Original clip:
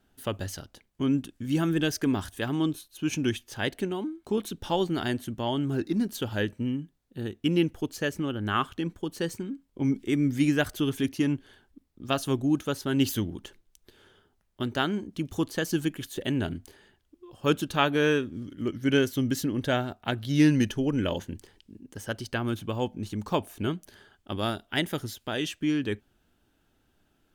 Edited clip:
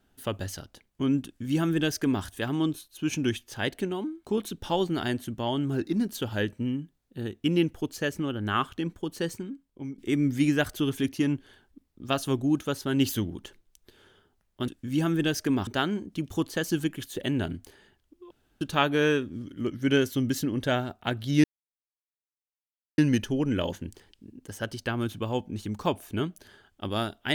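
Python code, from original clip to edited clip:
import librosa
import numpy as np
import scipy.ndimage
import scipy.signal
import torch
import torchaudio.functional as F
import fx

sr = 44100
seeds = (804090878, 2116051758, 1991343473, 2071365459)

y = fx.edit(x, sr, fx.duplicate(start_s=1.25, length_s=0.99, to_s=14.68),
    fx.fade_out_to(start_s=9.29, length_s=0.69, floor_db=-16.5),
    fx.room_tone_fill(start_s=17.32, length_s=0.3),
    fx.insert_silence(at_s=20.45, length_s=1.54), tone=tone)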